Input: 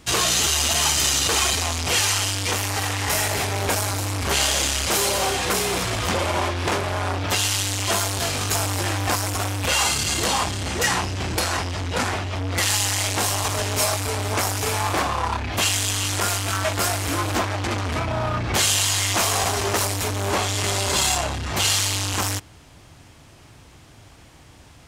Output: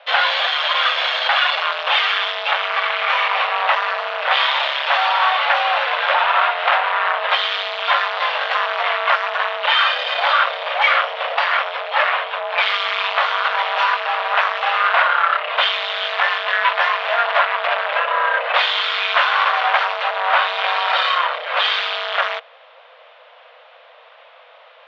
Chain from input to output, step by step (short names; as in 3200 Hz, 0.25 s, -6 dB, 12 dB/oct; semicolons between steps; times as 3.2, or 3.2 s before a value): mistuned SSB +360 Hz 170–3200 Hz; dynamic EQ 1500 Hz, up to +3 dB, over -32 dBFS, Q 1; gain +6 dB